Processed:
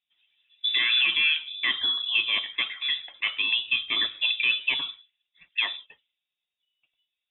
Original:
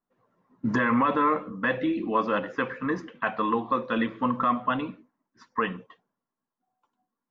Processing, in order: inverted band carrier 3700 Hz

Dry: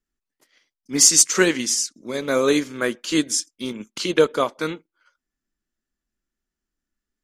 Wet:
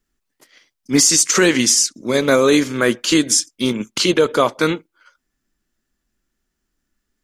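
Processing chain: bell 120 Hz +5 dB 0.29 oct; maximiser +13.5 dB; gain -3.5 dB

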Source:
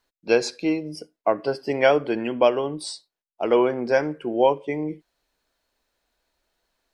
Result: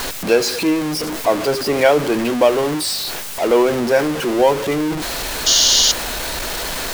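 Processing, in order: zero-crossing step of -20.5 dBFS; painted sound noise, 5.46–5.92, 2800–7000 Hz -16 dBFS; gain +2.5 dB

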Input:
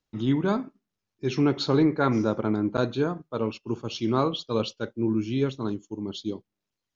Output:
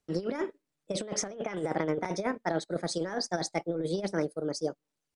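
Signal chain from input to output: pitch shift +1.5 st; negative-ratio compressor -27 dBFS, ratio -0.5; speed mistake 33 rpm record played at 45 rpm; gain -3 dB

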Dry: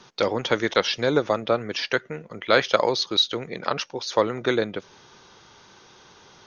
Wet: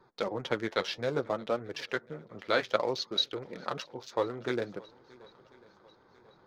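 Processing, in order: Wiener smoothing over 15 samples; flange 0.59 Hz, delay 2 ms, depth 9.9 ms, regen -39%; swung echo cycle 1.043 s, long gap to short 1.5:1, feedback 44%, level -24 dB; gain -5 dB

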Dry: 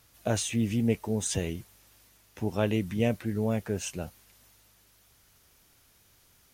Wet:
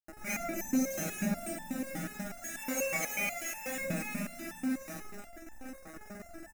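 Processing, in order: spectrum mirrored in octaves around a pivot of 1200 Hz; low-pass opened by the level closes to 2100 Hz, open at -25.5 dBFS; in parallel at -2.5 dB: compressor, threshold -37 dBFS, peak gain reduction 16 dB; on the sum: spring tank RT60 2.8 s, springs 35/46 ms, chirp 50 ms, DRR -6 dB; sample gate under -36.5 dBFS; power-law curve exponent 0.35; Butterworth band-stop 4500 Hz, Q 6; fixed phaser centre 660 Hz, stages 8; on a send: echo 0.108 s -7.5 dB; on the sum: stepped resonator 8.2 Hz 160–880 Hz

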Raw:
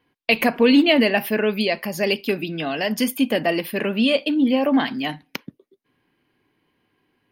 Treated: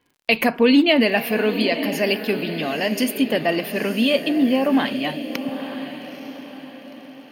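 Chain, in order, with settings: diffused feedback echo 0.903 s, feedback 43%, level -10 dB; crackle 57/s -46 dBFS

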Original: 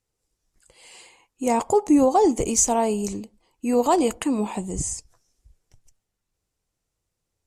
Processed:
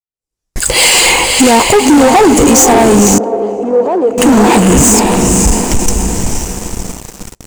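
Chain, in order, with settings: recorder AGC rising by 78 dB/s; on a send: diffused feedback echo 0.529 s, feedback 49%, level -5.5 dB; on the sum: gate with hold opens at -31 dBFS; sample leveller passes 5; 3.18–4.18 band-pass 500 Hz, Q 2.4; gain -1 dB

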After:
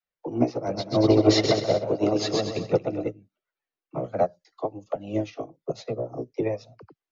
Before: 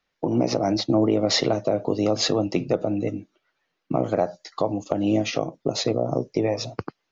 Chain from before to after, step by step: high shelf 6000 Hz -6 dB; dispersion lows, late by 40 ms, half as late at 420 Hz; flange 1.2 Hz, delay 1.3 ms, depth 1.6 ms, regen -37%; 0.54–3.08 bouncing-ball echo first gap 0.13 s, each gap 0.8×, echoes 5; upward expander 2.5:1, over -33 dBFS; gain +7.5 dB

